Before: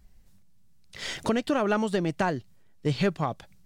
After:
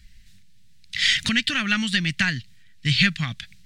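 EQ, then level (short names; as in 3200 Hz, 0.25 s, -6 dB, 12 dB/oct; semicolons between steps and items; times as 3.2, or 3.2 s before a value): EQ curve 120 Hz 0 dB, 230 Hz -4 dB, 420 Hz -28 dB, 970 Hz -19 dB, 1800 Hz +9 dB, 3900 Hz +11 dB, 5700 Hz +5 dB, 8300 Hz +3 dB, 12000 Hz -3 dB; +6.5 dB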